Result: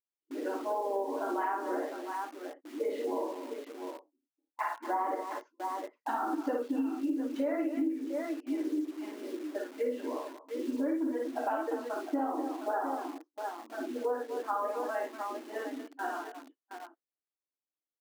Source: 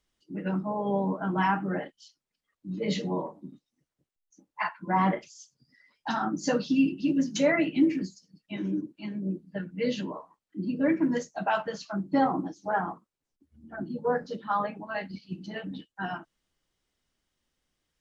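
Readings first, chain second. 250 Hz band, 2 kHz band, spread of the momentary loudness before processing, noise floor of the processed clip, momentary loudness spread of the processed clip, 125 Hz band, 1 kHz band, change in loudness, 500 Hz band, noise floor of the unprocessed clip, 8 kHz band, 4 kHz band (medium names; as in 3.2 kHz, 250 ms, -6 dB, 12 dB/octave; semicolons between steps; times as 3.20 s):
-6.0 dB, -8.0 dB, 15 LU, under -85 dBFS, 10 LU, under -30 dB, -3.0 dB, -5.5 dB, -2.0 dB, under -85 dBFS, no reading, -11.0 dB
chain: low-pass 1.2 kHz 12 dB/octave; on a send: multi-tap echo 43/56/241/705 ms -9.5/-3/-12.5/-10 dB; on the sum: gate with hold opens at -39 dBFS; in parallel at -6.5 dB: bit crusher 7-bit; on the sum: brick-wall FIR high-pass 250 Hz; compression 6:1, threshold -27 dBFS, peak gain reduction 15.5 dB; trim -2 dB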